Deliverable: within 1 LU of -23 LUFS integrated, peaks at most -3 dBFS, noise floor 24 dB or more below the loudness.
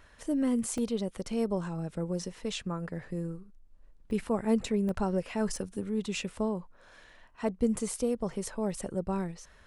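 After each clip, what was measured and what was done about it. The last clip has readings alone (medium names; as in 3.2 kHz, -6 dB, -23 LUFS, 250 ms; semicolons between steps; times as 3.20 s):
dropouts 6; longest dropout 1.4 ms; loudness -32.5 LUFS; peak level -15.5 dBFS; loudness target -23.0 LUFS
-> interpolate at 0.78/2.22/4.11/4.89/5.56/7.77 s, 1.4 ms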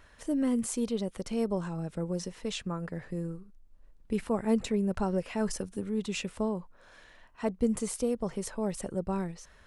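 dropouts 0; loudness -32.5 LUFS; peak level -15.5 dBFS; loudness target -23.0 LUFS
-> trim +9.5 dB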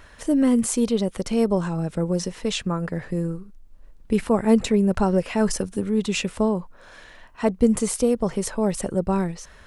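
loudness -23.0 LUFS; peak level -6.0 dBFS; noise floor -48 dBFS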